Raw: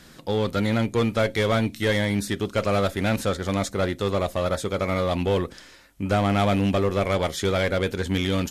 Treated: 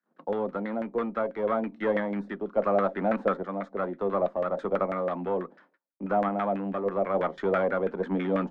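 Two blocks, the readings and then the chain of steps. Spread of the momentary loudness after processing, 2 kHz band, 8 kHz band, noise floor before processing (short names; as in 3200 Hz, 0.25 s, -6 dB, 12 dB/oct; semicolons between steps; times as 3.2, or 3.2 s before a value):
6 LU, -8.5 dB, under -30 dB, -49 dBFS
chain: gate -45 dBFS, range -37 dB; steep high-pass 170 Hz 72 dB/oct; random-step tremolo; added harmonics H 6 -28 dB, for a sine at -11 dBFS; LFO low-pass saw down 6.1 Hz 570–1700 Hz; gain -3 dB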